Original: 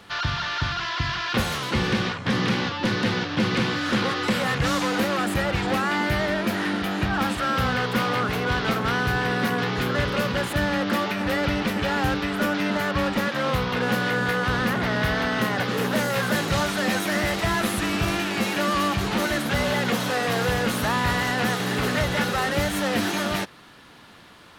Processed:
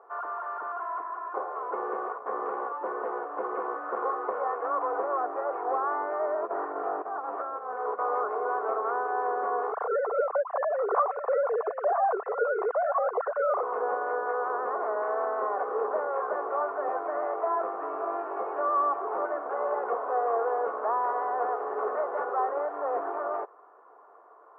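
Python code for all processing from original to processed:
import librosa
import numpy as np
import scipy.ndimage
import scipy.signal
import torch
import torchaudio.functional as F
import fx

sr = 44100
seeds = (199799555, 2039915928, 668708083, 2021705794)

y = fx.chain(x, sr, fx.high_shelf(hz=3000.0, db=-10.5),
    fx.notch_comb(f0_hz=230.0),
    fx.doppler_dist(depth_ms=0.17), at=(1.01, 1.56))
y = fx.chain(y, sr, fx.over_compress(threshold_db=-26.0, ratio=-0.5),
    fx.low_shelf(hz=130.0, db=9.5), at=(6.42, 7.99))
y = fx.chain(y, sr, fx.sine_speech(),
    fx.echo_single(ms=981, db=-10.5), at=(9.72, 13.63))
y = scipy.signal.sosfilt(scipy.signal.ellip(3, 1.0, 60, [430.0, 1200.0], 'bandpass', fs=sr, output='sos'), y)
y = y + 0.3 * np.pad(y, (int(2.8 * sr / 1000.0), 0))[:len(y)]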